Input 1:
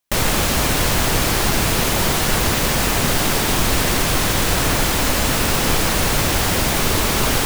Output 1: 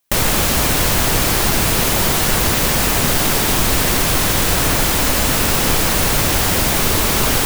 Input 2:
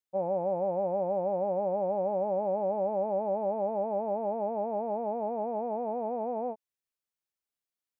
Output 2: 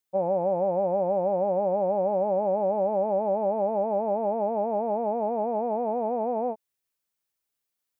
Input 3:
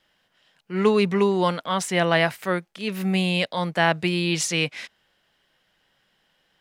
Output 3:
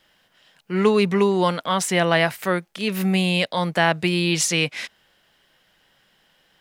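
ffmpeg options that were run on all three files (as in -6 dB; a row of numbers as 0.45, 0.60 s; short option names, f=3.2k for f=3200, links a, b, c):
-filter_complex "[0:a]highshelf=f=9.8k:g=5.5,asplit=2[a][b];[b]acompressor=threshold=-27dB:ratio=6,volume=1dB[c];[a][c]amix=inputs=2:normalize=0,volume=-1dB"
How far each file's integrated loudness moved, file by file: +3.0, +5.0, +2.0 LU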